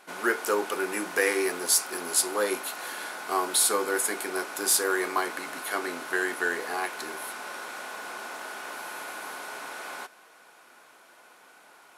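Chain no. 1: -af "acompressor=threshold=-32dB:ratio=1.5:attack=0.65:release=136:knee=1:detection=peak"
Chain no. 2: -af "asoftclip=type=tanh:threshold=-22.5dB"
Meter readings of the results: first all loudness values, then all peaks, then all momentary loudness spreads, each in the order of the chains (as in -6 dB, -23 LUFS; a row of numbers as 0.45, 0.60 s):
-32.5, -31.0 LUFS; -15.0, -22.5 dBFS; 9, 11 LU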